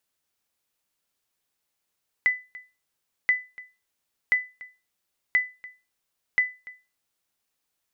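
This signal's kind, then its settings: sonar ping 2 kHz, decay 0.28 s, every 1.03 s, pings 5, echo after 0.29 s, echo -20.5 dB -13 dBFS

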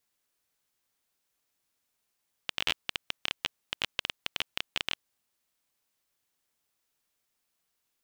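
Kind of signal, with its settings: random clicks 15 per s -10.5 dBFS 2.57 s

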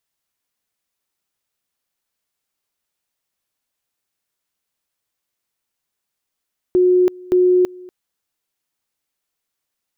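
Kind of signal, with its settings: two-level tone 363 Hz -10 dBFS, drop 24 dB, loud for 0.33 s, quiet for 0.24 s, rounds 2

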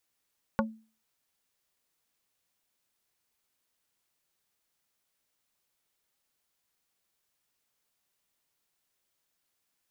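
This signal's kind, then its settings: wood hit plate, lowest mode 221 Hz, modes 5, decay 0.37 s, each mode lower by 0.5 dB, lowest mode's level -23 dB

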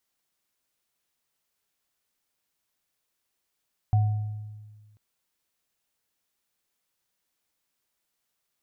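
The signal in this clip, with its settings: sine partials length 1.04 s, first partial 106 Hz, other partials 737 Hz, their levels -14 dB, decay 1.58 s, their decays 0.85 s, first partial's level -16.5 dB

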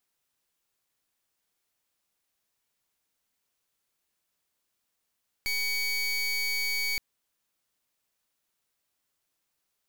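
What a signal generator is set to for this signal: pulse 2.25 kHz, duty 26% -29 dBFS 1.52 s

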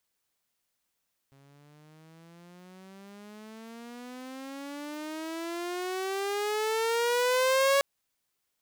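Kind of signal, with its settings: gliding synth tone saw, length 6.49 s, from 136 Hz, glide +24.5 st, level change +35.5 dB, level -18 dB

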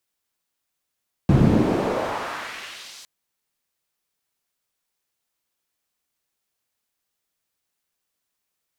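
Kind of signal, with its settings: swept filtered noise pink, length 1.76 s bandpass, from 130 Hz, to 5.8 kHz, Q 1.3, exponential, gain ramp -30 dB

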